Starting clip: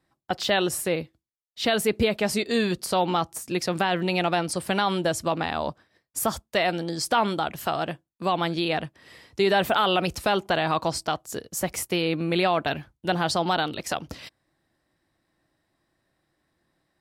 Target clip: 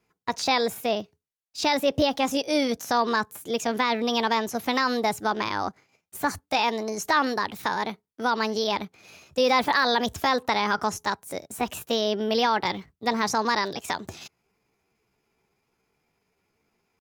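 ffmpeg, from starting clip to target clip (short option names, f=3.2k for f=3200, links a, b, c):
-filter_complex "[0:a]asetrate=57191,aresample=44100,atempo=0.771105,acrossover=split=6700[a][b];[b]acompressor=threshold=-38dB:ratio=4:attack=1:release=60[c];[a][c]amix=inputs=2:normalize=0"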